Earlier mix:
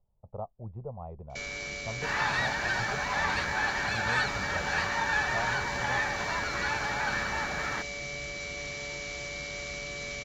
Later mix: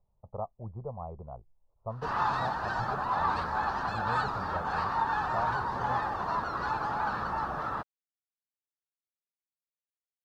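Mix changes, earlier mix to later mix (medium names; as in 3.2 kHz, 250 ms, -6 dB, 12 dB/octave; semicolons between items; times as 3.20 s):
first sound: muted; master: add resonant high shelf 1.5 kHz -7.5 dB, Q 3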